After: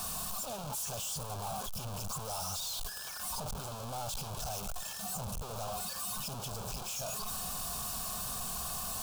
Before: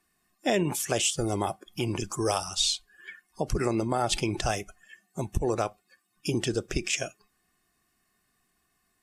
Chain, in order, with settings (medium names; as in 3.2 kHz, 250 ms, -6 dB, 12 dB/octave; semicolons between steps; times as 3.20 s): one-bit comparator; static phaser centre 810 Hz, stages 4; trim -5 dB